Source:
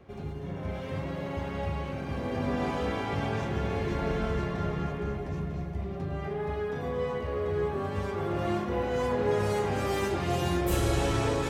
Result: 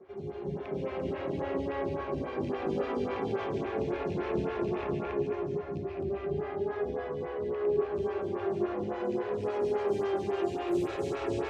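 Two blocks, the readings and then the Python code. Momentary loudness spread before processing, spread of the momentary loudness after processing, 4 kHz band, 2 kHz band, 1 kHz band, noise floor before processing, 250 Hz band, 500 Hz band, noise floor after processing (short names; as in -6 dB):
8 LU, 5 LU, -9.0 dB, -6.0 dB, -4.0 dB, -37 dBFS, -2.0 dB, +0.5 dB, -39 dBFS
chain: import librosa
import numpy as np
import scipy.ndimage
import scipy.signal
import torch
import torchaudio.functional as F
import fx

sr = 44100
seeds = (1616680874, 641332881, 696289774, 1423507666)

y = fx.rattle_buzz(x, sr, strikes_db=-27.0, level_db=-26.0)
y = 10.0 ** (-26.0 / 20.0) * np.tanh(y / 10.0 ** (-26.0 / 20.0))
y = scipy.signal.sosfilt(scipy.signal.butter(2, 75.0, 'highpass', fs=sr, output='sos'), y)
y = fx.peak_eq(y, sr, hz=380.0, db=14.0, octaves=0.23)
y = y + 10.0 ** (-7.5 / 20.0) * np.pad(y, (int(214 * sr / 1000.0), 0))[:len(y)]
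y = fx.rider(y, sr, range_db=3, speed_s=2.0)
y = scipy.signal.sosfilt(scipy.signal.butter(2, 7000.0, 'lowpass', fs=sr, output='sos'), y)
y = fx.rev_freeverb(y, sr, rt60_s=1.8, hf_ratio=0.45, predelay_ms=100, drr_db=-3.0)
y = fx.stagger_phaser(y, sr, hz=3.6)
y = y * librosa.db_to_amplitude(-5.5)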